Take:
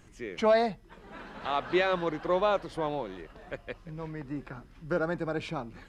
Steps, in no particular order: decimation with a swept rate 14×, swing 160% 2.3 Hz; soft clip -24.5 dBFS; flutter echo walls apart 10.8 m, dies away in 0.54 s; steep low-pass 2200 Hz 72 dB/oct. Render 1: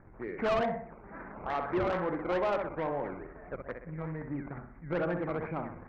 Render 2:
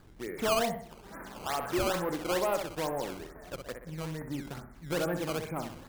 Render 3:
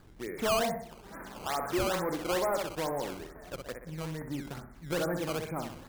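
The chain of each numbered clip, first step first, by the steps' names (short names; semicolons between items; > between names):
flutter echo > decimation with a swept rate > steep low-pass > soft clip; steep low-pass > soft clip > flutter echo > decimation with a swept rate; flutter echo > soft clip > steep low-pass > decimation with a swept rate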